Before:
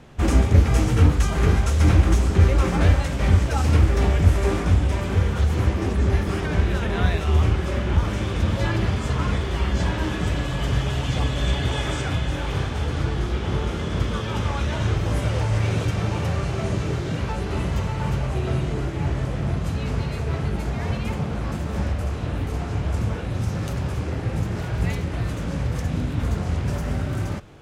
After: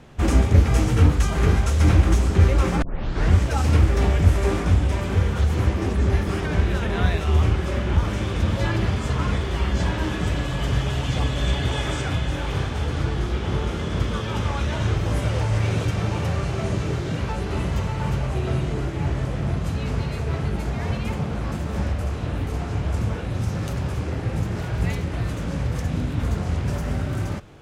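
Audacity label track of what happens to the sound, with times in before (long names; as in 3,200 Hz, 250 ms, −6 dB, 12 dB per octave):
2.820000	2.820000	tape start 0.53 s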